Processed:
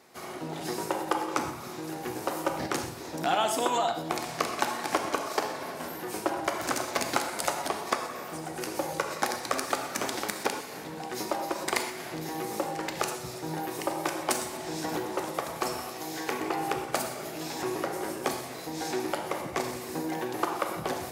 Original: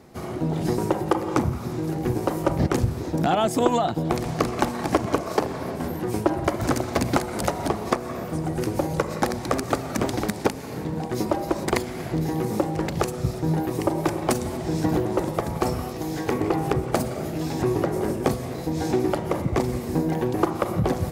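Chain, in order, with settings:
high-pass filter 1,200 Hz 6 dB per octave
reverb whose tail is shaped and stops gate 150 ms flat, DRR 5 dB

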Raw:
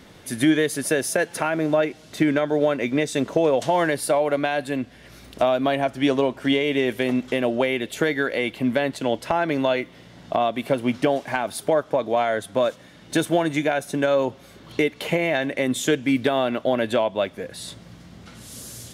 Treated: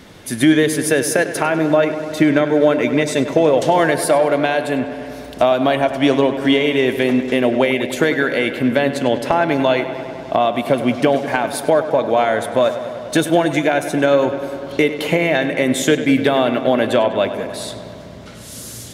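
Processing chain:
feedback echo with a low-pass in the loop 99 ms, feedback 81%, low-pass 4,600 Hz, level −12 dB
level +5.5 dB

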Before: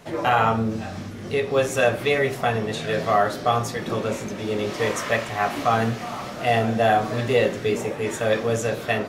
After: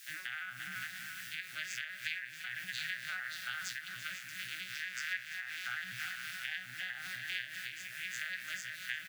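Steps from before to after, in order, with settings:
vocoder with an arpeggio as carrier major triad, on B2, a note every 82 ms
high-shelf EQ 5,100 Hz −6 dB
on a send at −23 dB: convolution reverb RT60 0.40 s, pre-delay 120 ms
on the sum: bit-depth reduction 10 bits, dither triangular
in parallel at +1 dB: brickwall limiter −20.5 dBFS, peak gain reduction 10.5 dB
on the sum: elliptic high-pass filter 1,600 Hz, stop band 40 dB
repeating echo 339 ms, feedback 57%, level −12 dB
downward compressor 6 to 1, threshold −37 dBFS, peak gain reduction 12.5 dB
amplitude modulation by smooth noise, depth 60%
level +4.5 dB

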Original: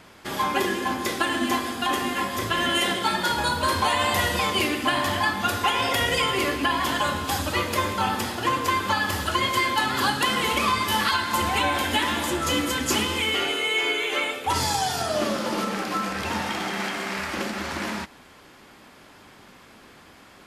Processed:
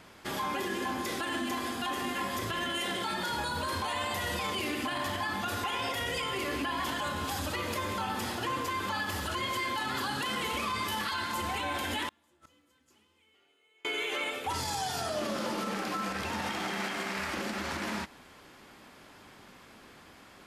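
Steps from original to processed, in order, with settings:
0:12.08–0:13.85: gate with flip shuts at −17 dBFS, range −39 dB
brickwall limiter −20.5 dBFS, peak gain reduction 10 dB
level −4 dB

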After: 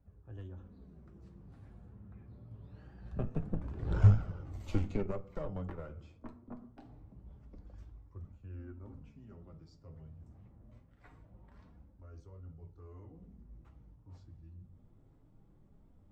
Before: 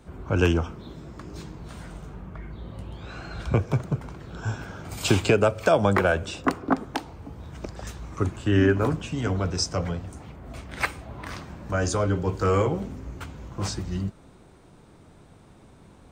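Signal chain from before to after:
source passing by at 0:03.95, 34 m/s, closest 3.2 metres
on a send at −9 dB: convolution reverb RT60 0.50 s, pre-delay 4 ms
on the sum: harmonic generator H 8 −18 dB, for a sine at −18.5 dBFS
flanger 0.24 Hz, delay 1.3 ms, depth 8.1 ms, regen −37%
reversed playback
upward compression, threshold −53 dBFS
reversed playback
spectral tilt −3.5 dB per octave

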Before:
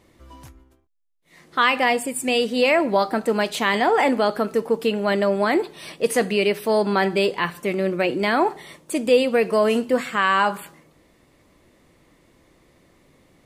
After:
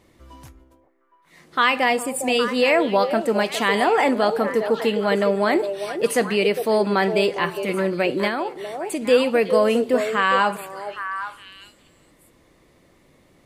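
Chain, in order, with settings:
echo through a band-pass that steps 407 ms, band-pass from 520 Hz, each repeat 1.4 octaves, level −5.5 dB
0:08.27–0:09.02: downward compressor 4 to 1, threshold −23 dBFS, peak gain reduction 8 dB

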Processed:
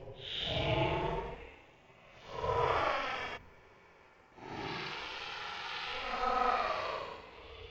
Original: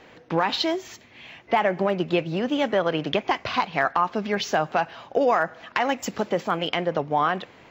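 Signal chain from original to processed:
extreme stretch with random phases 13×, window 0.05 s, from 0:03.10
ring modulation 260 Hz
healed spectral selection 0:03.40–0:03.95, 270–8,300 Hz after
level −9 dB

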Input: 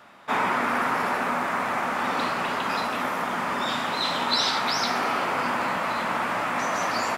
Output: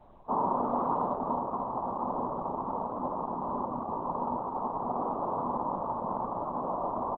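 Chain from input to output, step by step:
Butterworth low-pass 1,100 Hz 72 dB per octave
background noise brown −55 dBFS
on a send: echo with shifted repeats 178 ms, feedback 51%, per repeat +91 Hz, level −20.5 dB
on the sum: level −2 dB
Opus 8 kbit/s 48,000 Hz

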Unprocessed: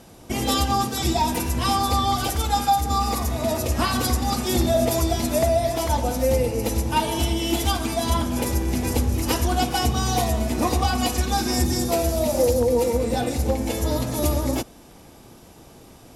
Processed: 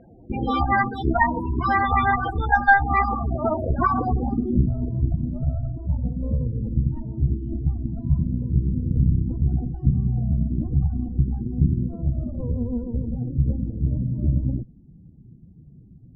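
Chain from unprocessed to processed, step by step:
harmonic generator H 4 −9 dB, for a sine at −7.5 dBFS
spectral peaks only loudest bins 16
low-pass filter sweep 1,900 Hz → 160 Hz, 0:03.73–0:04.65

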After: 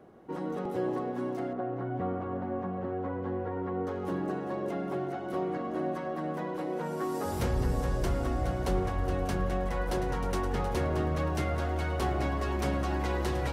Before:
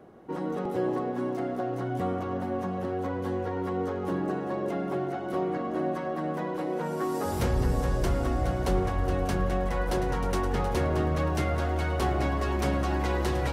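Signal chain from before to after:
0:01.53–0:03.87: low-pass filter 1,900 Hz 12 dB per octave
level −3 dB

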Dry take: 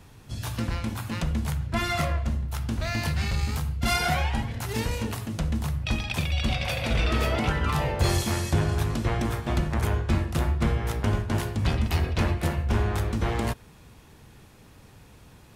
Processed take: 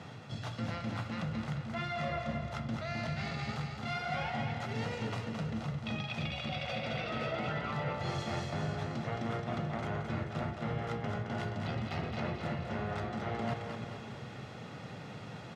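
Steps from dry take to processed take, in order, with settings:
high-pass filter 130 Hz 24 dB per octave
notch filter 2,600 Hz, Q 29
comb filter 1.5 ms, depth 41%
reversed playback
downward compressor 6 to 1, threshold −43 dBFS, peak gain reduction 21 dB
reversed playback
high-frequency loss of the air 150 metres
on a send: echo with a time of its own for lows and highs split 440 Hz, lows 306 ms, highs 218 ms, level −5 dB
on the sum: level +7.5 dB

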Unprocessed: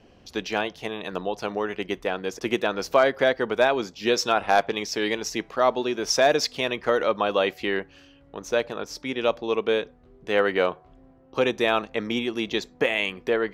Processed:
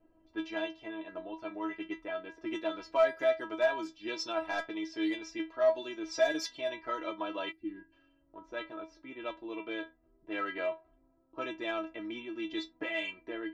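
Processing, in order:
stiff-string resonator 320 Hz, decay 0.21 s, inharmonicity 0.002
low-pass that shuts in the quiet parts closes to 1,100 Hz, open at −30 dBFS
in parallel at −7 dB: soft clipping −29 dBFS, distortion −9 dB
on the sum: gain on a spectral selection 0:07.52–0:07.92, 370–8,200 Hz −20 dB

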